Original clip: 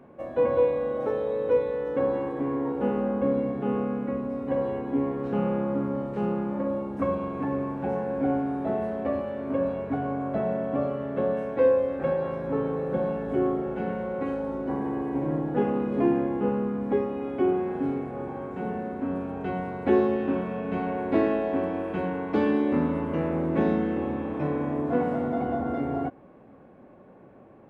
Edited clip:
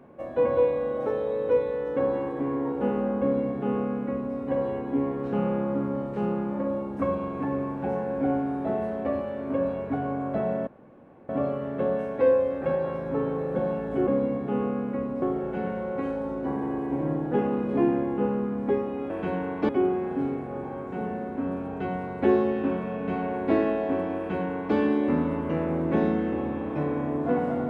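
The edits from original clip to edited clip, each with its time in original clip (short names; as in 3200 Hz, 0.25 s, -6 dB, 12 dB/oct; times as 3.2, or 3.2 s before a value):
3.21–4.36 copy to 13.45
10.67 insert room tone 0.62 s
21.81–22.4 copy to 17.33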